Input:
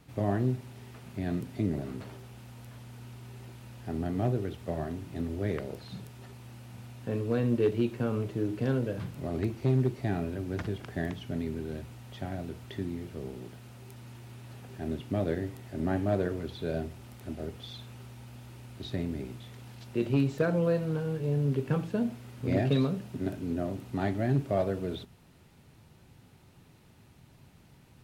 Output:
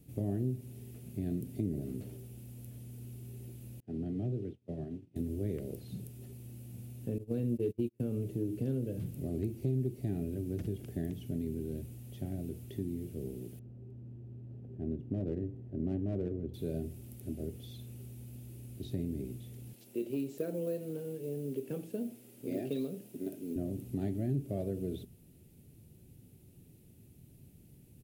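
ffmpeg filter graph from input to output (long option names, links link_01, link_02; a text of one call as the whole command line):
ffmpeg -i in.wav -filter_complex "[0:a]asettb=1/sr,asplit=3[link_01][link_02][link_03];[link_01]atrim=end=3.804[link_04];[link_02]atrim=start=3.8:end=5.16,asetpts=PTS-STARTPTS,afade=type=in:duration=0.004:curve=qsin,afade=type=out:start_time=1.356:duration=0.004:curve=qsin,agate=range=-33dB:threshold=-32dB:ratio=3:release=100:detection=peak,acrossover=split=160|3000[link_05][link_06][link_07];[link_06]acompressor=threshold=-35dB:ratio=2:attack=3.2:release=140:knee=2.83:detection=peak[link_08];[link_05][link_08][link_07]amix=inputs=3:normalize=0,highpass=110,lowpass=3900[link_09];[link_03]atrim=start=5.156[link_10];[link_04][link_09]acrossfade=duration=0.004:curve1=hsin:curve2=qsin[link_11];[link_11][link_10]acrossfade=duration=0.004:curve1=qsin:curve2=hsin,asettb=1/sr,asplit=3[link_12][link_13][link_14];[link_12]atrim=end=7.184[link_15];[link_13]atrim=start=7.18:end=8,asetpts=PTS-STARTPTS,afade=type=in:duration=0.004:curve=qsin,afade=type=out:start_time=0.816:duration=0.004:curve=qsin,agate=range=-36dB:threshold=-30dB:ratio=16:release=100:detection=peak,acompressor=mode=upward:threshold=-33dB:ratio=2.5:attack=3.2:release=140:knee=2.83:detection=peak[link_16];[link_14]atrim=start=7.996[link_17];[link_15][link_16]acrossfade=duration=0.004:curve1=hsin:curve2=qsin[link_18];[link_18][link_17]acrossfade=duration=0.004:curve1=qsin:curve2=hsin,asettb=1/sr,asplit=3[link_19][link_20][link_21];[link_19]atrim=end=13.594[link_22];[link_20]atrim=start=13.59:end=16.54,asetpts=PTS-STARTPTS,afade=type=in:duration=0.004:curve=qsin,afade=type=out:start_time=2.946:duration=0.004:curve=qsin,bandreject=frequency=2200:width=11,asoftclip=type=hard:threshold=-22.5dB,adynamicsmooth=sensitivity=3:basefreq=890[link_23];[link_21]atrim=start=16.536[link_24];[link_22][link_23]acrossfade=duration=0.004:curve1=hsin:curve2=qsin[link_25];[link_25][link_24]acrossfade=duration=0.004:curve1=qsin:curve2=hsin,asettb=1/sr,asplit=3[link_26][link_27][link_28];[link_26]atrim=end=19.734[link_29];[link_27]atrim=start=19.73:end=23.56,asetpts=PTS-STARTPTS,afade=type=in:duration=0.004:curve=qsin,afade=type=out:start_time=3.826:duration=0.004:curve=qsin,highpass=330,acrusher=bits=8:mode=log:mix=0:aa=0.000001[link_30];[link_28]atrim=start=23.556[link_31];[link_29][link_30]acrossfade=duration=0.004:curve1=hsin:curve2=qsin[link_32];[link_32][link_31]acrossfade=duration=0.004:curve1=qsin:curve2=hsin,firequalizer=gain_entry='entry(360,0);entry(1000,-23);entry(2600,-10);entry(4100,-11);entry(11000,6)':delay=0.05:min_phase=1,acompressor=threshold=-33dB:ratio=2" out.wav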